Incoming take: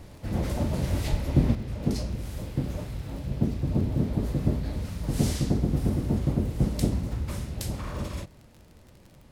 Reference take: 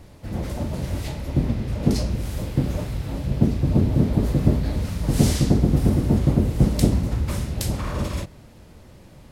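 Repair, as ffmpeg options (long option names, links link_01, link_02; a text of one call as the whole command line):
ffmpeg -i in.wav -filter_complex "[0:a]adeclick=threshold=4,asplit=3[link_01][link_02][link_03];[link_01]afade=type=out:start_time=1.1:duration=0.02[link_04];[link_02]highpass=frequency=140:width=0.5412,highpass=frequency=140:width=1.3066,afade=type=in:start_time=1.1:duration=0.02,afade=type=out:start_time=1.22:duration=0.02[link_05];[link_03]afade=type=in:start_time=1.22:duration=0.02[link_06];[link_04][link_05][link_06]amix=inputs=3:normalize=0,asetnsamples=nb_out_samples=441:pad=0,asendcmd='1.55 volume volume 7dB',volume=0dB" out.wav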